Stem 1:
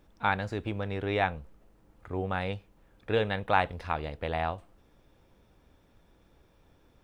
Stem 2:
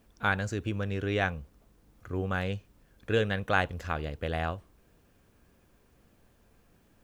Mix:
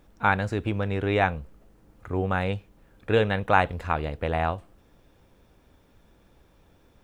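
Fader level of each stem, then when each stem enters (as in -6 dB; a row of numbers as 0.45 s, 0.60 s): +3.0 dB, -4.5 dB; 0.00 s, 0.00 s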